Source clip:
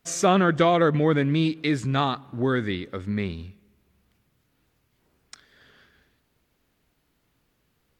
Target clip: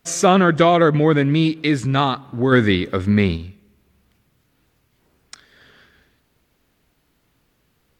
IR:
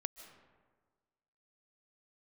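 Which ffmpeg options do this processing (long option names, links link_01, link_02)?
-filter_complex "[0:a]asplit=3[link_01][link_02][link_03];[link_01]afade=type=out:start_time=2.51:duration=0.02[link_04];[link_02]acontrast=51,afade=type=in:start_time=2.51:duration=0.02,afade=type=out:start_time=3.36:duration=0.02[link_05];[link_03]afade=type=in:start_time=3.36:duration=0.02[link_06];[link_04][link_05][link_06]amix=inputs=3:normalize=0,volume=5.5dB"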